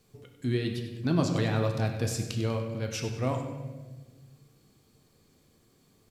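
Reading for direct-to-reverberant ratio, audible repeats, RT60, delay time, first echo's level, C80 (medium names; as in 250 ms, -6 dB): 3.0 dB, 2, 1.3 s, 97 ms, -12.5 dB, 7.0 dB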